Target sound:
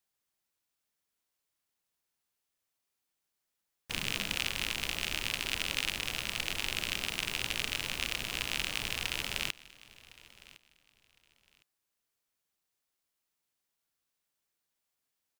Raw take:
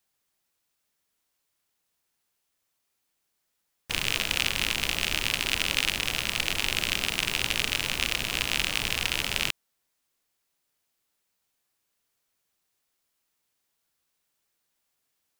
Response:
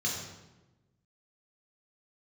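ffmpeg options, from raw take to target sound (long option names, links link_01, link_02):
-filter_complex "[0:a]asettb=1/sr,asplit=3[link_01][link_02][link_03];[link_01]atrim=end=3.914[link_04];[link_02]atrim=start=3.91:end=4.36,asetpts=PTS-STARTPTS,afade=type=in:duration=0.004:curve=qsin,afade=type=out:start_time=0.446:duration=0.004:curve=qsin,equalizer=frequency=200:width_type=o:width=0.77:gain=8.5[link_05];[link_03]atrim=start=4.356[link_06];[link_04][link_05]acrossfade=duration=0.004:curve1=hsin:curve2=qsin[link_07];[link_07][link_06]acrossfade=duration=0.004:curve1=qsin:curve2=hsin,aecho=1:1:1059|2118:0.0891|0.0205,volume=-7dB"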